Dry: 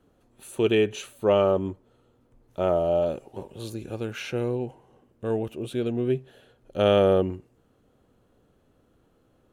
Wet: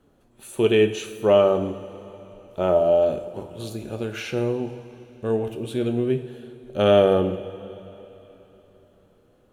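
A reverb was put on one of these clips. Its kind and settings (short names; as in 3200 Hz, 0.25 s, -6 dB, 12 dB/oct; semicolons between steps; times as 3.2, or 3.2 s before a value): two-slope reverb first 0.6 s, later 3.7 s, from -14 dB, DRR 6.5 dB; gain +2 dB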